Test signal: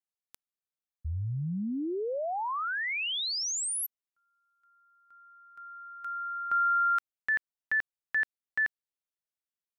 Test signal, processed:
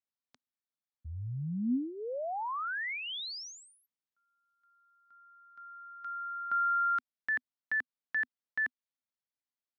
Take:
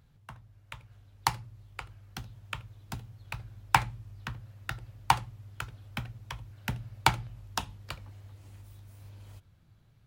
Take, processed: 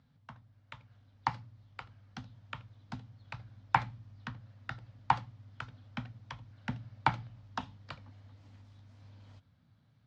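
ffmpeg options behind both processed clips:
-filter_complex "[0:a]acrossover=split=2600[s0][s1];[s1]acompressor=threshold=0.0141:ratio=4:attack=1:release=60[s2];[s0][s2]amix=inputs=2:normalize=0,highpass=100,equalizer=f=250:t=q:w=4:g=9,equalizer=f=370:t=q:w=4:g=-10,equalizer=f=2600:t=q:w=4:g=-4,lowpass=f=5400:w=0.5412,lowpass=f=5400:w=1.3066,volume=0.708"

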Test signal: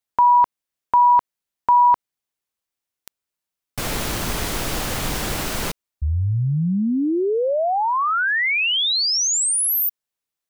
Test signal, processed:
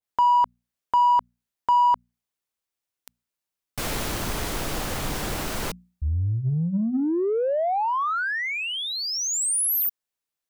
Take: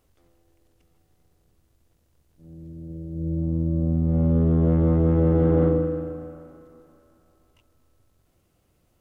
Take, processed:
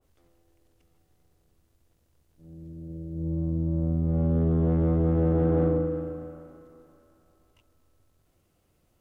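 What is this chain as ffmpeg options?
-filter_complex "[0:a]bandreject=f=60:t=h:w=6,bandreject=f=120:t=h:w=6,bandreject=f=180:t=h:w=6,bandreject=f=240:t=h:w=6,asplit=2[s0][s1];[s1]asoftclip=type=tanh:threshold=0.0841,volume=0.596[s2];[s0][s2]amix=inputs=2:normalize=0,adynamicequalizer=threshold=0.0398:dfrequency=1600:dqfactor=0.7:tfrequency=1600:tqfactor=0.7:attack=5:release=100:ratio=0.4:range=3.5:mode=cutabove:tftype=highshelf,volume=0.501"

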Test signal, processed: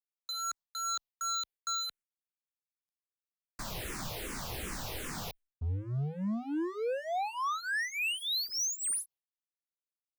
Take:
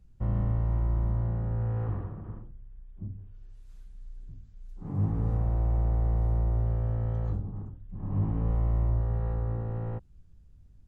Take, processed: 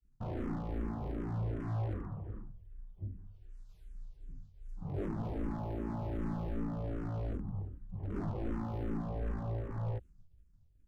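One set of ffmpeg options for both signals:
-filter_complex "[0:a]aeval=exprs='0.0398*(abs(mod(val(0)/0.0398+3,4)-2)-1)':c=same,agate=range=0.0224:threshold=0.00501:ratio=3:detection=peak,asplit=2[s0][s1];[s1]afreqshift=-2.6[s2];[s0][s2]amix=inputs=2:normalize=1"

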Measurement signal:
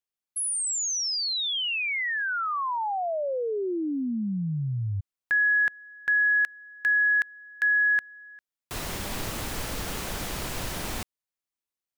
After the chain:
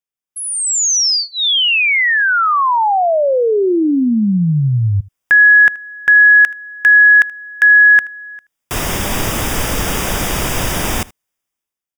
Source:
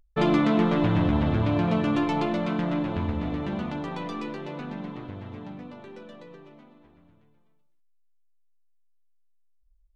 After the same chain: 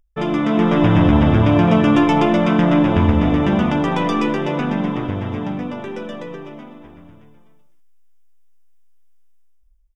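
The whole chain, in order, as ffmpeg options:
-filter_complex "[0:a]dynaudnorm=f=140:g=9:m=5.62,asuperstop=centerf=4200:order=4:qfactor=4.5,asplit=2[s0][s1];[s1]aecho=0:1:78:0.0794[s2];[s0][s2]amix=inputs=2:normalize=0"

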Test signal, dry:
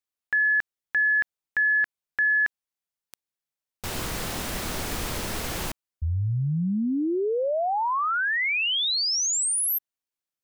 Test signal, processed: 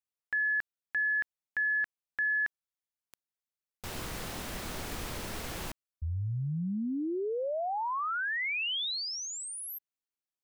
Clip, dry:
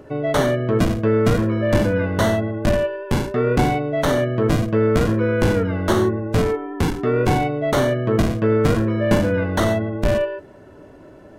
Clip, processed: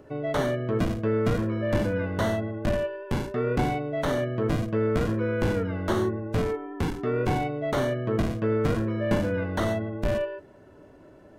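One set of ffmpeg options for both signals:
-filter_complex "[0:a]acrossover=split=4000[s0][s1];[s1]acompressor=threshold=0.0224:ratio=4:attack=1:release=60[s2];[s0][s2]amix=inputs=2:normalize=0,volume=0.422"

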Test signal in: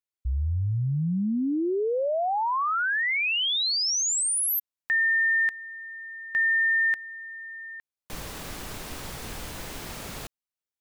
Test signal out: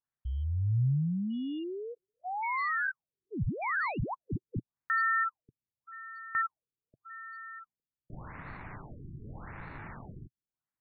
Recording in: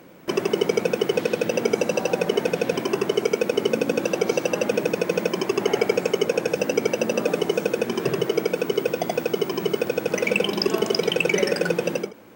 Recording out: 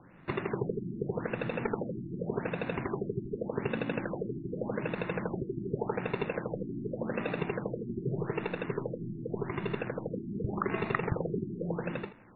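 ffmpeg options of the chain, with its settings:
-af "acrusher=samples=14:mix=1:aa=0.000001,equalizer=f=125:t=o:w=1:g=9,equalizer=f=500:t=o:w=1:g=-6,equalizer=f=1000:t=o:w=1:g=3,equalizer=f=2000:t=o:w=1:g=8,equalizer=f=4000:t=o:w=1:g=-10,afftfilt=real='re*lt(b*sr/1024,380*pow(4500/380,0.5+0.5*sin(2*PI*0.85*pts/sr)))':imag='im*lt(b*sr/1024,380*pow(4500/380,0.5+0.5*sin(2*PI*0.85*pts/sr)))':win_size=1024:overlap=0.75,volume=0.355"

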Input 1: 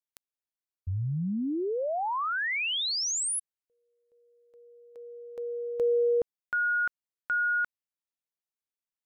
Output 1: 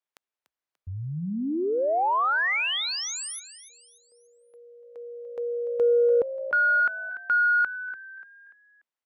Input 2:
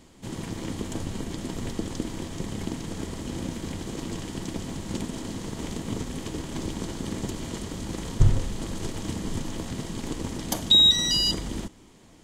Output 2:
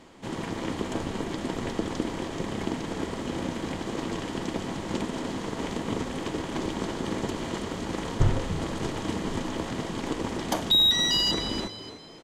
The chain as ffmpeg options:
-filter_complex "[0:a]asplit=5[s0][s1][s2][s3][s4];[s1]adelay=292,afreqshift=58,volume=0.2[s5];[s2]adelay=584,afreqshift=116,volume=0.0759[s6];[s3]adelay=876,afreqshift=174,volume=0.0288[s7];[s4]adelay=1168,afreqshift=232,volume=0.011[s8];[s0][s5][s6][s7][s8]amix=inputs=5:normalize=0,asplit=2[s9][s10];[s10]highpass=f=720:p=1,volume=5.62,asoftclip=type=tanh:threshold=0.562[s11];[s9][s11]amix=inputs=2:normalize=0,lowpass=f=1400:p=1,volume=0.501"

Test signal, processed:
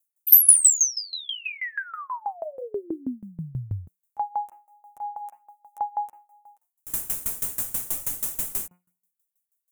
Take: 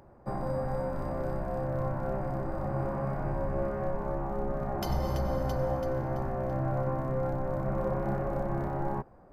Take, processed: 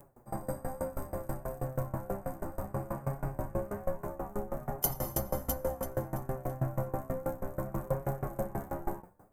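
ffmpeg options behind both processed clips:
-filter_complex "[0:a]aexciter=amount=10.5:drive=5.2:freq=6700,bandreject=f=178.9:t=h:w=4,bandreject=f=357.8:t=h:w=4,bandreject=f=536.7:t=h:w=4,bandreject=f=715.6:t=h:w=4,bandreject=f=894.5:t=h:w=4,bandreject=f=1073.4:t=h:w=4,bandreject=f=1252.3:t=h:w=4,bandreject=f=1431.2:t=h:w=4,bandreject=f=1610.1:t=h:w=4,bandreject=f=1789:t=h:w=4,bandreject=f=1967.9:t=h:w=4,bandreject=f=2146.8:t=h:w=4,bandreject=f=2325.7:t=h:w=4,bandreject=f=2504.6:t=h:w=4,bandreject=f=2683.5:t=h:w=4,bandreject=f=2862.4:t=h:w=4,asplit=2[s0][s1];[s1]asoftclip=type=hard:threshold=0.158,volume=0.355[s2];[s0][s2]amix=inputs=2:normalize=0,flanger=delay=6.9:depth=5:regen=3:speed=0.62:shape=triangular,aeval=exprs='val(0)*pow(10,-22*if(lt(mod(6.2*n/s,1),2*abs(6.2)/1000),1-mod(6.2*n/s,1)/(2*abs(6.2)/1000),(mod(6.2*n/s,1)-2*abs(6.2)/1000)/(1-2*abs(6.2)/1000))/20)':c=same,volume=1.33"

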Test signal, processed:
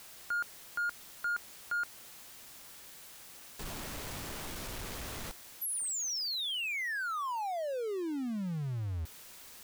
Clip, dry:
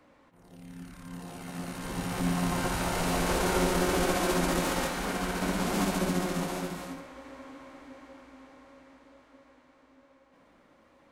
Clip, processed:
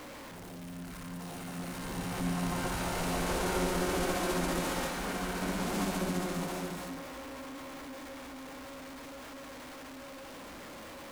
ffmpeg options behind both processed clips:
-af "aeval=exprs='val(0)+0.5*0.0168*sgn(val(0))':c=same,volume=0.531"

